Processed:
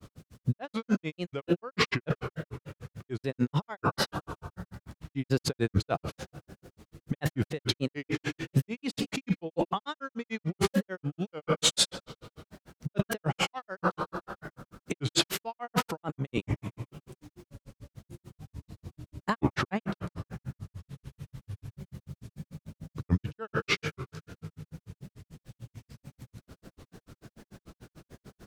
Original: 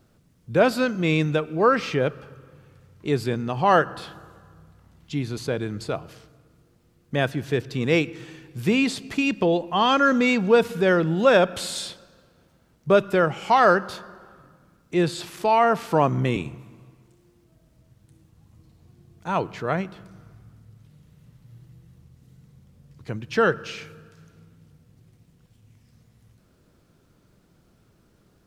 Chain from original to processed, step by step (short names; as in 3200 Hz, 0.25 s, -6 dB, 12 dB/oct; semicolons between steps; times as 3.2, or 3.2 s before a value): negative-ratio compressor -32 dBFS, ratio -1; grains 94 ms, grains 6.8/s, spray 20 ms, pitch spread up and down by 3 st; gain +5.5 dB